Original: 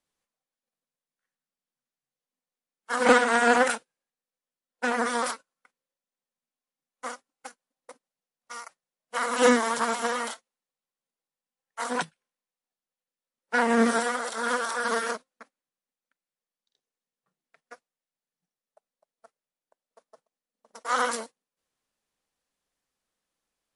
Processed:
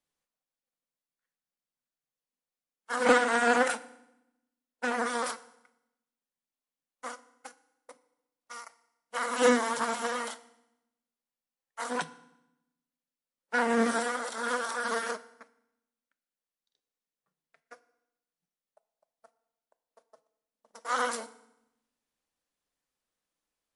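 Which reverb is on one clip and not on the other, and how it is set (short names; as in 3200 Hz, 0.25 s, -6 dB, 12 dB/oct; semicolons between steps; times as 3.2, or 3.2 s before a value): FDN reverb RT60 0.87 s, low-frequency decay 1.4×, high-frequency decay 0.9×, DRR 14 dB; gain -4 dB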